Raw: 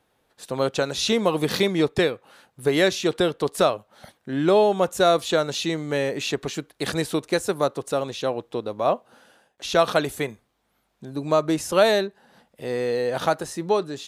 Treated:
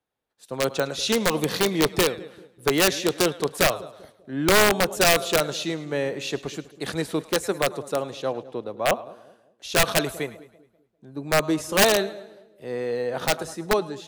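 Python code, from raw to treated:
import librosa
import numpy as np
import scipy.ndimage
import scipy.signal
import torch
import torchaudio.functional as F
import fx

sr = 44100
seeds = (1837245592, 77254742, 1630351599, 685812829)

y = fx.echo_split(x, sr, split_hz=560.0, low_ms=197, high_ms=106, feedback_pct=52, wet_db=-15.5)
y = (np.mod(10.0 ** (11.0 / 20.0) * y + 1.0, 2.0) - 1.0) / 10.0 ** (11.0 / 20.0)
y = fx.band_widen(y, sr, depth_pct=40)
y = F.gain(torch.from_numpy(y), -1.0).numpy()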